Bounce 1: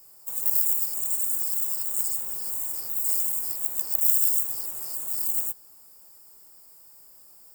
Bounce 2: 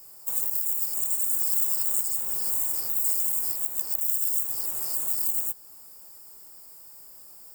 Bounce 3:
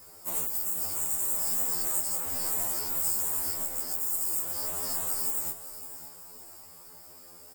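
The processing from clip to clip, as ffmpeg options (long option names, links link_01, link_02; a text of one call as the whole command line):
ffmpeg -i in.wav -af "alimiter=limit=-13.5dB:level=0:latency=1:release=364,volume=4dB" out.wav
ffmpeg -i in.wav -af "aemphasis=mode=reproduction:type=cd,aecho=1:1:559|1118|1677|2236:0.224|0.0918|0.0376|0.0154,afftfilt=real='re*2*eq(mod(b,4),0)':imag='im*2*eq(mod(b,4),0)':win_size=2048:overlap=0.75,volume=8.5dB" out.wav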